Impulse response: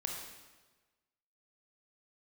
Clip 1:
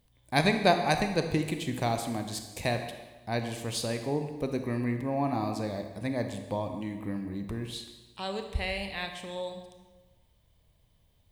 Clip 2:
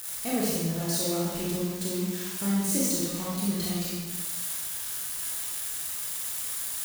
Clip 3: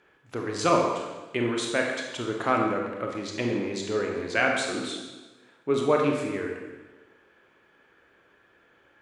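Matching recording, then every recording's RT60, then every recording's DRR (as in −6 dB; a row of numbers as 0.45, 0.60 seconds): 3; 1.3, 1.3, 1.3 seconds; 5.5, −6.5, 0.5 decibels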